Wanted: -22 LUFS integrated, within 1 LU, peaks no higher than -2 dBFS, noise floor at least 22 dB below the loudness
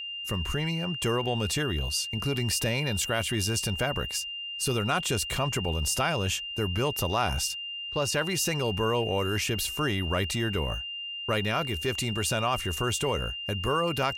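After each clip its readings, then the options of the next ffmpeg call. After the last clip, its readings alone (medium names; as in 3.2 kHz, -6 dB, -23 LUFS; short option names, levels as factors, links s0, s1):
steady tone 2.8 kHz; tone level -34 dBFS; loudness -28.0 LUFS; peak level -14.5 dBFS; loudness target -22.0 LUFS
-> -af "bandreject=f=2800:w=30"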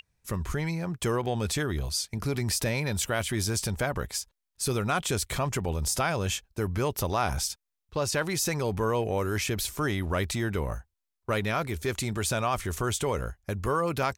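steady tone not found; loudness -29.5 LUFS; peak level -15.5 dBFS; loudness target -22.0 LUFS
-> -af "volume=2.37"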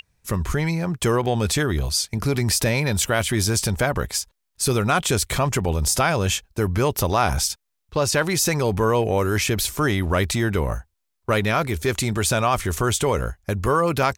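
loudness -22.0 LUFS; peak level -8.0 dBFS; noise floor -76 dBFS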